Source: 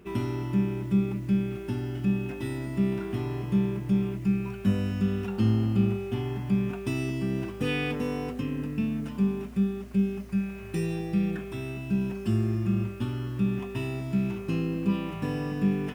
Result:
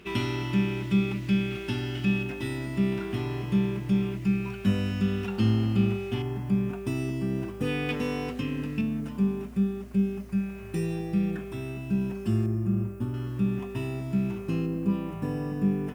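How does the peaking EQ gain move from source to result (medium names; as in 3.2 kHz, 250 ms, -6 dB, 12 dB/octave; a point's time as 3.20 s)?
peaking EQ 3.3 kHz 2.1 oct
+12.5 dB
from 2.23 s +5.5 dB
from 6.22 s -4 dB
from 7.89 s +6 dB
from 8.81 s -2.5 dB
from 12.46 s -14 dB
from 13.14 s -3 dB
from 14.66 s -9 dB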